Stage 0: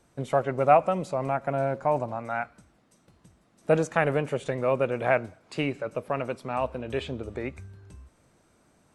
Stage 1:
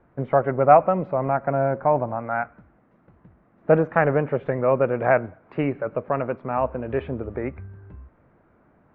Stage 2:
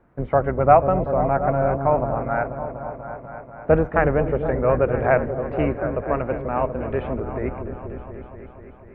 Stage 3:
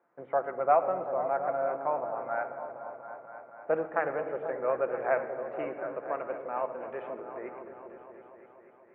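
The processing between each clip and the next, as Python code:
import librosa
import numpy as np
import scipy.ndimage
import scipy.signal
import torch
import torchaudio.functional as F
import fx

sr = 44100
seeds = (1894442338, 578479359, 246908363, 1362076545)

y1 = scipy.signal.sosfilt(scipy.signal.butter(4, 1900.0, 'lowpass', fs=sr, output='sos'), x)
y1 = y1 * 10.0 ** (5.0 / 20.0)
y2 = fx.octave_divider(y1, sr, octaves=2, level_db=-4.0)
y2 = fx.echo_opening(y2, sr, ms=243, hz=400, octaves=1, feedback_pct=70, wet_db=-6)
y3 = fx.bandpass_edges(y2, sr, low_hz=480.0, high_hz=2300.0)
y3 = fx.room_shoebox(y3, sr, seeds[0], volume_m3=3600.0, walls='mixed', distance_m=0.8)
y3 = y3 * 10.0 ** (-8.5 / 20.0)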